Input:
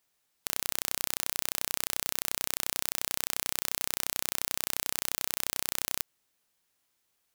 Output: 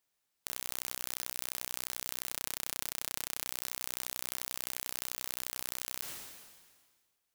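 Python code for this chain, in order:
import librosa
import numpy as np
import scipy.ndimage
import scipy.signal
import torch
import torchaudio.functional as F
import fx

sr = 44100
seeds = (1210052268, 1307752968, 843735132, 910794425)

y = fx.doubler(x, sr, ms=38.0, db=-13.0, at=(2.26, 3.46))
y = fx.sustainer(y, sr, db_per_s=36.0)
y = F.gain(torch.from_numpy(y), -6.0).numpy()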